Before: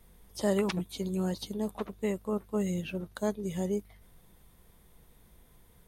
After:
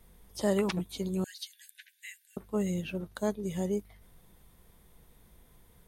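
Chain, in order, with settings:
0:01.24–0:02.37: linear-phase brick-wall high-pass 1,500 Hz

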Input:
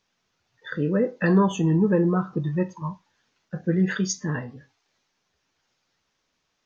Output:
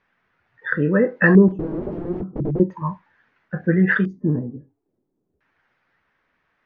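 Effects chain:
0:01.48–0:02.60: wrap-around overflow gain 23.5 dB
auto-filter low-pass square 0.37 Hz 340–1,800 Hz
level +4.5 dB

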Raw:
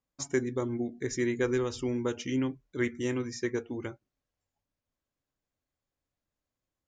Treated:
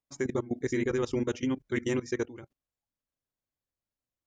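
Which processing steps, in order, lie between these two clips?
time stretch by overlap-add 0.62×, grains 87 ms
output level in coarse steps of 17 dB
level +6.5 dB

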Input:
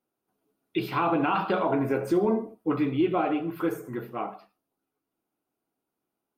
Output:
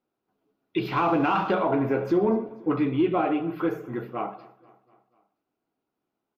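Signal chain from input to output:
0:00.85–0:01.54: mu-law and A-law mismatch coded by mu
moving average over 5 samples
in parallel at −11 dB: soft clipping −22.5 dBFS, distortion −13 dB
on the sum: repeating echo 243 ms, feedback 57%, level −22 dB

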